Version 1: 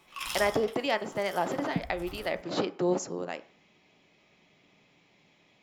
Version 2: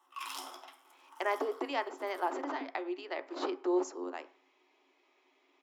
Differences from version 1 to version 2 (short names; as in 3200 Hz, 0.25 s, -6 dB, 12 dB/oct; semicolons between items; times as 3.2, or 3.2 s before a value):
speech: entry +0.85 s; master: add rippled Chebyshev high-pass 260 Hz, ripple 9 dB